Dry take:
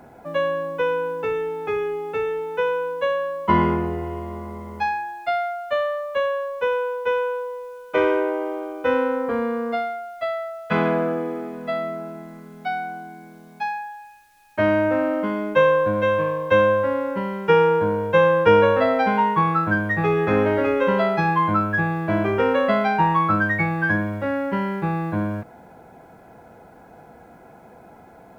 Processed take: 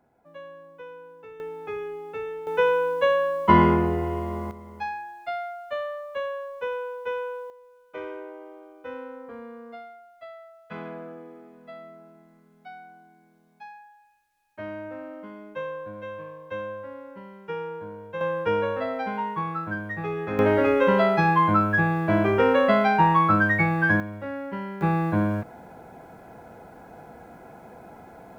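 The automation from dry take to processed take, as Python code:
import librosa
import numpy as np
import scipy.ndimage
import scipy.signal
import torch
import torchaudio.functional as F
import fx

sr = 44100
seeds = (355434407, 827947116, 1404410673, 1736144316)

y = fx.gain(x, sr, db=fx.steps((0.0, -20.0), (1.4, -8.5), (2.47, 1.5), (4.51, -8.0), (7.5, -17.0), (18.21, -10.0), (20.39, 0.0), (24.0, -9.0), (24.81, 1.0)))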